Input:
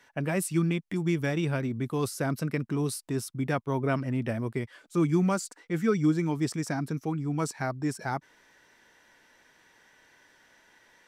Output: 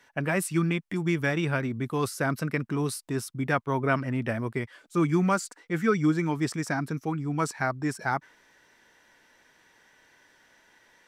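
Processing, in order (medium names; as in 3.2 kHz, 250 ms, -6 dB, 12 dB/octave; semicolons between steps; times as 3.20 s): dynamic bell 1.5 kHz, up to +7 dB, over -45 dBFS, Q 0.75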